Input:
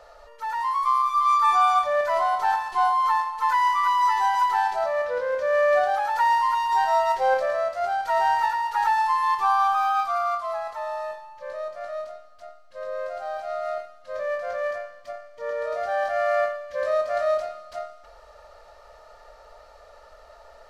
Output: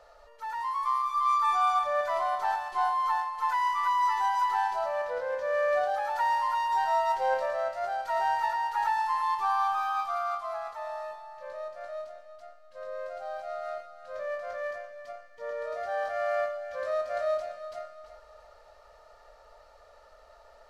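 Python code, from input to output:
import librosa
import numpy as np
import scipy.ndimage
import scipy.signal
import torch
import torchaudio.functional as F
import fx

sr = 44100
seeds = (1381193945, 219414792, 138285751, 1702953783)

y = fx.echo_feedback(x, sr, ms=340, feedback_pct=36, wet_db=-12.5)
y = y * librosa.db_to_amplitude(-6.5)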